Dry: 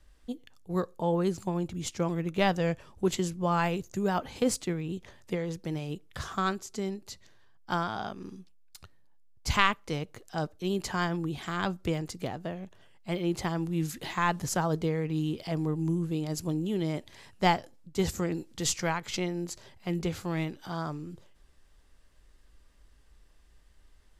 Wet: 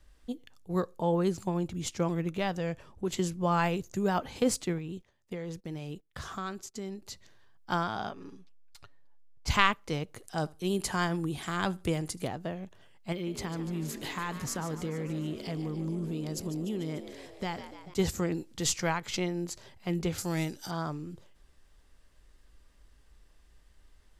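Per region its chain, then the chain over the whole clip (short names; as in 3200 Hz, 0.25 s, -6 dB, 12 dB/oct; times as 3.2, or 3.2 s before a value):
2.37–3.17 compressor 1.5:1, threshold -36 dBFS + mismatched tape noise reduction decoder only
4.78–7.02 gate -47 dBFS, range -19 dB + compressor 2:1, threshold -38 dBFS
8.1–9.48 LPF 3100 Hz 6 dB/oct + bell 160 Hz -7.5 dB 1.9 oct + comb 7.1 ms, depth 60%
10.15–12.28 bell 9900 Hz +12 dB 0.56 oct + feedback echo 77 ms, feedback 18%, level -24 dB
13.12–17.94 bell 710 Hz -4.5 dB 0.61 oct + compressor 4:1, threshold -31 dBFS + frequency-shifting echo 0.147 s, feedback 65%, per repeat +59 Hz, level -12 dB
20.18–20.71 band shelf 7800 Hz +14 dB + notch 1100 Hz, Q 8.1
whole clip: dry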